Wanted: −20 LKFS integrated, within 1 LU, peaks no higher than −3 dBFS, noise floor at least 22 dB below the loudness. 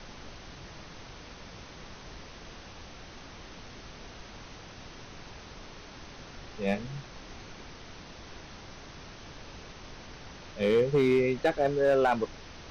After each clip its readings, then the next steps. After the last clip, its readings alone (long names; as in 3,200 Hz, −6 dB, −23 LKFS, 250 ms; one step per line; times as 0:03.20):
share of clipped samples 0.4%; peaks flattened at −18.0 dBFS; background noise floor −48 dBFS; target noise floor −50 dBFS; integrated loudness −27.5 LKFS; sample peak −18.0 dBFS; target loudness −20.0 LKFS
→ clipped peaks rebuilt −18 dBFS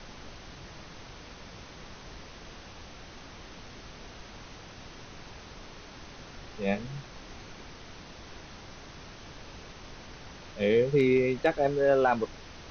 share of clipped samples 0.0%; background noise floor −48 dBFS; target noise floor −49 dBFS
→ noise reduction from a noise print 6 dB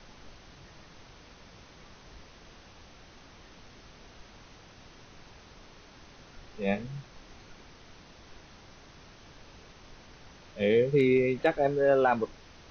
background noise floor −54 dBFS; integrated loudness −26.5 LKFS; sample peak −11.5 dBFS; target loudness −20.0 LKFS
→ level +6.5 dB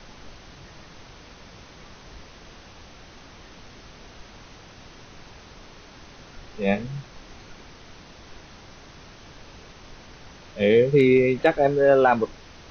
integrated loudness −20.0 LKFS; sample peak −5.0 dBFS; background noise floor −47 dBFS